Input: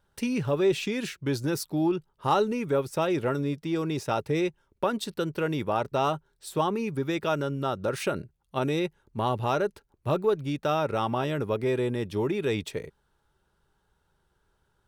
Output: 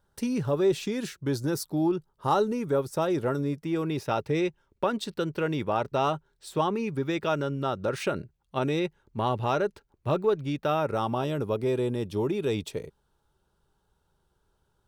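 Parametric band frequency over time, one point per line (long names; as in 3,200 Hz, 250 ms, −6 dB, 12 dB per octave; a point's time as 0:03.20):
parametric band −7.5 dB 0.86 octaves
0:03.39 2,500 Hz
0:04.29 12,000 Hz
0:10.51 12,000 Hz
0:11.07 1,900 Hz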